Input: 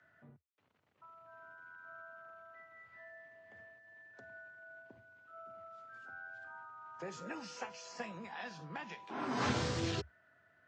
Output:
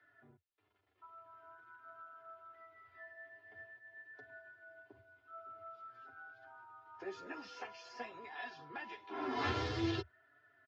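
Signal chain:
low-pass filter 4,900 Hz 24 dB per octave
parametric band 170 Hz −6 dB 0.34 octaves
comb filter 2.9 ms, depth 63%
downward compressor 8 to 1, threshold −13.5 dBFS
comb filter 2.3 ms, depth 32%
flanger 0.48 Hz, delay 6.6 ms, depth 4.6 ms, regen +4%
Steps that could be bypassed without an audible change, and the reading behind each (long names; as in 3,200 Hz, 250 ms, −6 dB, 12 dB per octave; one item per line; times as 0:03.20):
downward compressor, threshold −13.5 dBFS: peak of its input −22.5 dBFS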